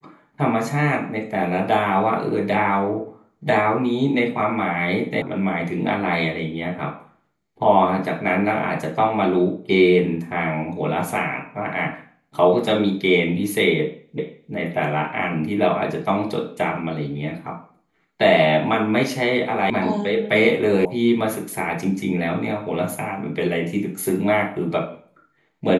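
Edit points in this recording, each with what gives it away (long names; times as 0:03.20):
0:05.22: cut off before it has died away
0:14.18: the same again, the last 0.35 s
0:19.70: cut off before it has died away
0:20.85: cut off before it has died away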